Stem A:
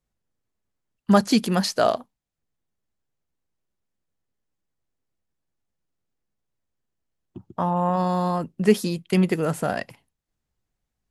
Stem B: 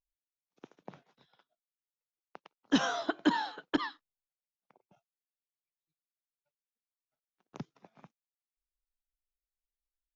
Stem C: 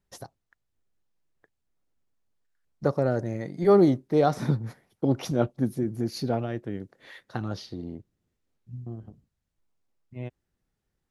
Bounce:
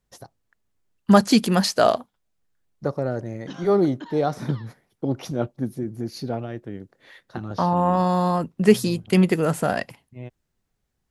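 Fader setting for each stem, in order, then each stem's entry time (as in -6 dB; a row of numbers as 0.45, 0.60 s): +2.5, -11.5, -1.0 dB; 0.00, 0.75, 0.00 s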